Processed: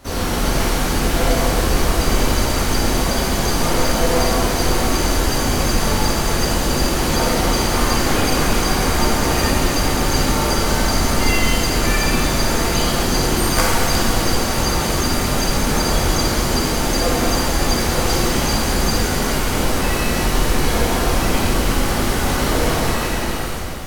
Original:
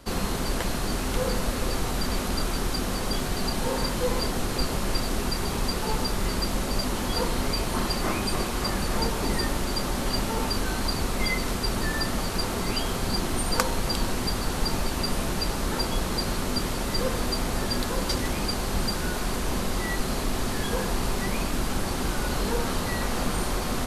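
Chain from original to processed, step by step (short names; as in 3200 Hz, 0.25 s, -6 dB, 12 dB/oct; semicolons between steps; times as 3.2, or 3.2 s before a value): ending faded out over 1.25 s; harmoniser +5 st -2 dB; shimmer reverb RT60 2.4 s, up +7 st, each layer -8 dB, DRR -6 dB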